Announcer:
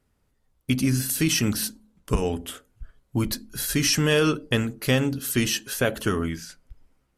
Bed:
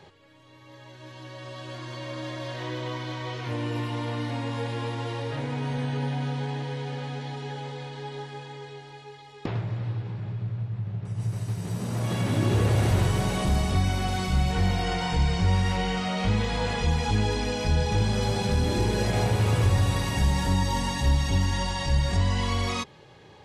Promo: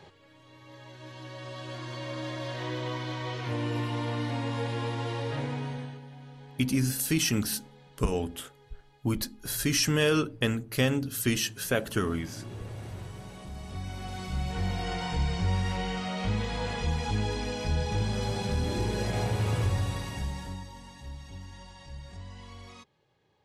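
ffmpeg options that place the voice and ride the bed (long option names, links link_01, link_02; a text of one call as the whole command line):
ffmpeg -i stem1.wav -i stem2.wav -filter_complex "[0:a]adelay=5900,volume=-4dB[link_01];[1:a]volume=12dB,afade=type=out:start_time=5.4:duration=0.61:silence=0.141254,afade=type=in:start_time=13.53:duration=1.43:silence=0.223872,afade=type=out:start_time=19.57:duration=1.15:silence=0.177828[link_02];[link_01][link_02]amix=inputs=2:normalize=0" out.wav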